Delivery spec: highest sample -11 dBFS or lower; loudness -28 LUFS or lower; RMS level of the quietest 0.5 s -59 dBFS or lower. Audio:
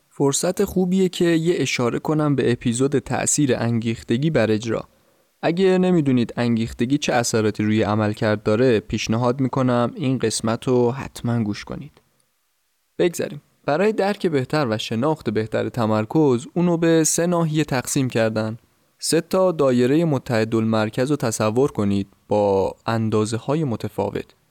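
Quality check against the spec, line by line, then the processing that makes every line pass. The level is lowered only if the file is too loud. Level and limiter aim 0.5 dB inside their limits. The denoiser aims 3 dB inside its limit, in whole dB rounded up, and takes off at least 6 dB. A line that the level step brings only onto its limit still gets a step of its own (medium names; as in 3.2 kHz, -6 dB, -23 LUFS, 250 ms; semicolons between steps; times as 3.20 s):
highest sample -8.5 dBFS: fail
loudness -20.5 LUFS: fail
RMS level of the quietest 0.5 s -68 dBFS: pass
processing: trim -8 dB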